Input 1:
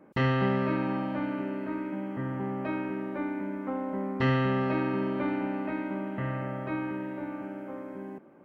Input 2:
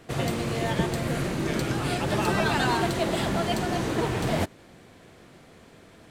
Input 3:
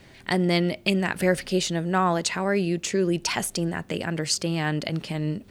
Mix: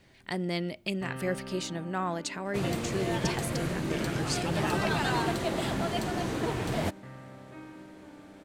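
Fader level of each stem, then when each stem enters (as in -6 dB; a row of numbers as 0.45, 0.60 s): -14.0, -4.5, -9.5 dB; 0.85, 2.45, 0.00 s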